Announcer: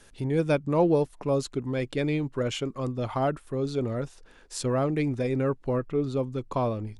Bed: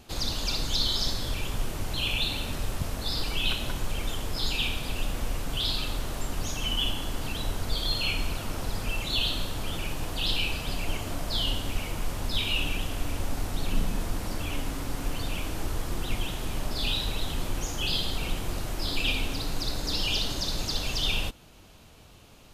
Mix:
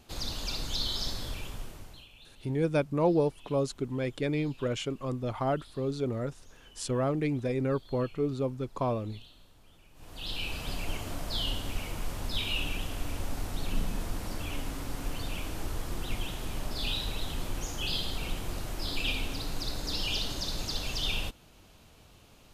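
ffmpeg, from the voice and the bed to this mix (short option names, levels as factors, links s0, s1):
-filter_complex "[0:a]adelay=2250,volume=0.708[s0];[1:a]volume=7.5,afade=t=out:st=1.22:d=0.85:silence=0.0841395,afade=t=in:st=9.93:d=0.72:silence=0.0707946[s1];[s0][s1]amix=inputs=2:normalize=0"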